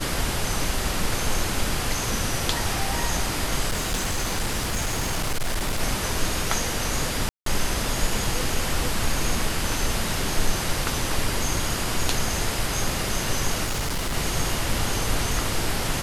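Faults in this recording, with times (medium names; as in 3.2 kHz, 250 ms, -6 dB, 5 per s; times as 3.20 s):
3.68–5.81 s: clipped -20.5 dBFS
7.29–7.46 s: dropout 173 ms
13.64–14.17 s: clipped -22.5 dBFS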